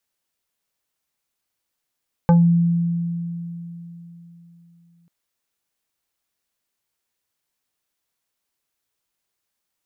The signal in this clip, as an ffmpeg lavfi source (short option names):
-f lavfi -i "aevalsrc='0.355*pow(10,-3*t/3.65)*sin(2*PI*170*t+0.87*pow(10,-3*t/0.23)*sin(2*PI*4.02*170*t))':d=2.79:s=44100"